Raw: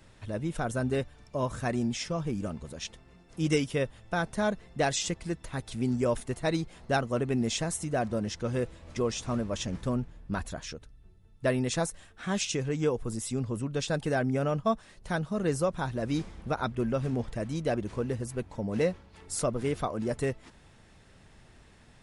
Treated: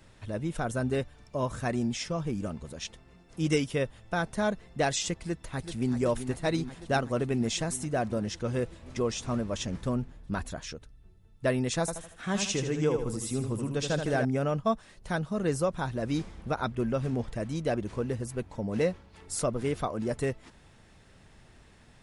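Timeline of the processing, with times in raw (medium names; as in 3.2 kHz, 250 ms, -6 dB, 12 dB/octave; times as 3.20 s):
5.18–5.93 s: echo throw 380 ms, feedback 80%, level -9.5 dB
11.80–14.25 s: feedback delay 78 ms, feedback 41%, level -6.5 dB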